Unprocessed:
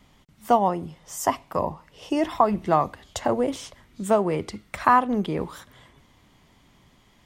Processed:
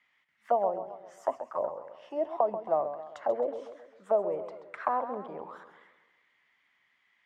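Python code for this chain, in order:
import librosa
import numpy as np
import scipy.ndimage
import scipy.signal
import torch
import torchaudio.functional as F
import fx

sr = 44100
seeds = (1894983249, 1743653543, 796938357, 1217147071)

y = fx.auto_wah(x, sr, base_hz=580.0, top_hz=2000.0, q=3.6, full_db=-20.0, direction='down')
y = fx.echo_warbled(y, sr, ms=133, feedback_pct=47, rate_hz=2.8, cents=137, wet_db=-10.5)
y = y * 10.0 ** (-1.5 / 20.0)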